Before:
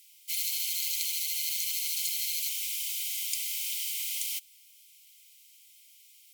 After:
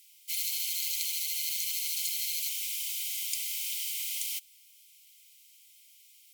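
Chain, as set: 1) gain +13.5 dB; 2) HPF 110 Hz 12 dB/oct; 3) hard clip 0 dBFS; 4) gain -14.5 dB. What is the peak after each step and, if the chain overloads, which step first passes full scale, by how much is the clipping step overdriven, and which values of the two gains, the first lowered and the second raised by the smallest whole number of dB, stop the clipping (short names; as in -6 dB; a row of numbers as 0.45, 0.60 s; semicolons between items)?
-2.5, -2.5, -2.5, -17.0 dBFS; no overload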